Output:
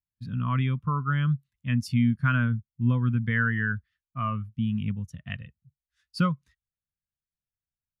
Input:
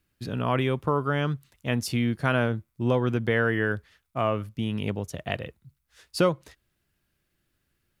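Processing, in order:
flat-topped bell 510 Hz −14 dB
every bin expanded away from the loudest bin 1.5 to 1

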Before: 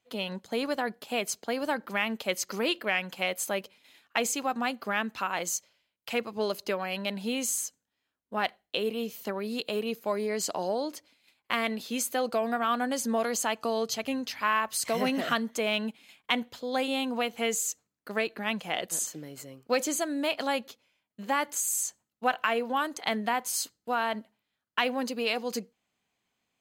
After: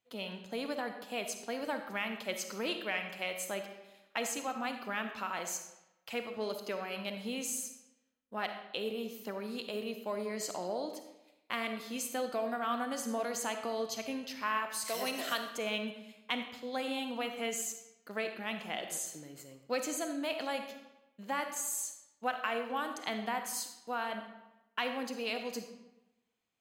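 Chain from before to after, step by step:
0:14.85–0:15.55: bass and treble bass −14 dB, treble +13 dB
convolution reverb RT60 0.95 s, pre-delay 10 ms, DRR 6 dB
level −7.5 dB

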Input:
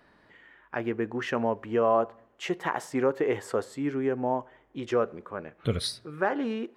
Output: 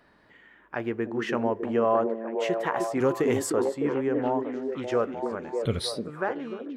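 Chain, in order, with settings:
fade-out on the ending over 0.68 s
0:03.00–0:03.50: bass and treble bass +8 dB, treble +15 dB
echo through a band-pass that steps 303 ms, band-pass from 280 Hz, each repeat 0.7 octaves, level −1 dB

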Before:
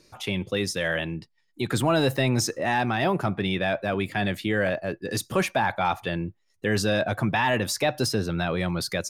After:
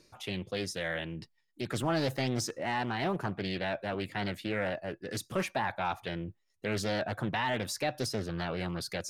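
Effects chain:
reversed playback
upward compression, threshold −31 dBFS
reversed playback
highs frequency-modulated by the lows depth 0.5 ms
level −8 dB

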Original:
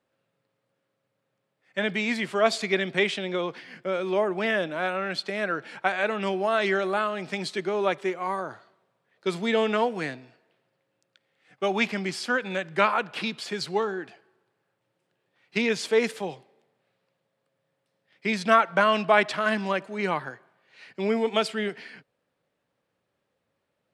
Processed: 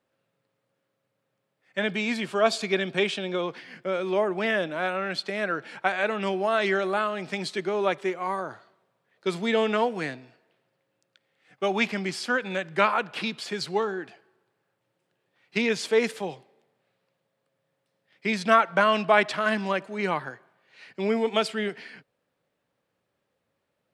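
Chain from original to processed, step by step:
0:01.87–0:03.41: notch filter 2,000 Hz, Q 7.7

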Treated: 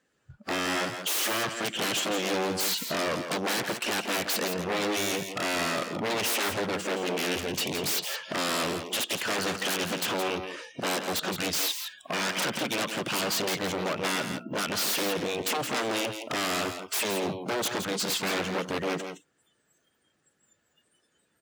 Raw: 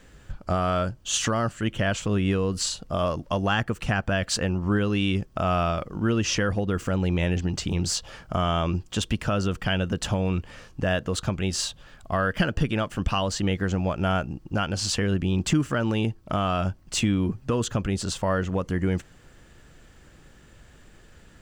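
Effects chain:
spectral magnitudes quantised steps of 15 dB
in parallel at 0 dB: downward compressor, threshold −33 dBFS, peak gain reduction 14.5 dB
on the sum: dynamic equaliser 3,400 Hz, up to +8 dB, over −42 dBFS, Q 0.78
on a send at −24 dB: convolution reverb RT60 1.5 s, pre-delay 6 ms
on the sum: wave folding −23 dBFS
high-pass filter 210 Hz 12 dB per octave
single-tap delay 168 ms −8 dB
noise reduction from a noise print of the clip's start 23 dB

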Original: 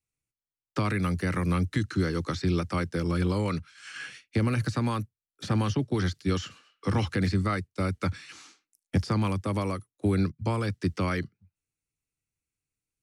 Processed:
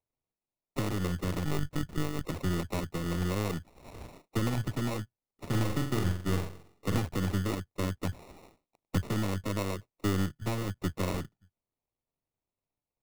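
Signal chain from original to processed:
gain on one half-wave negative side −7 dB
0:01.45–0:02.26: one-pitch LPC vocoder at 8 kHz 150 Hz
0:05.47–0:06.99: flutter between parallel walls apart 7.6 metres, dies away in 0.48 s
sample-rate reduction 1,600 Hz, jitter 0%
level −2 dB

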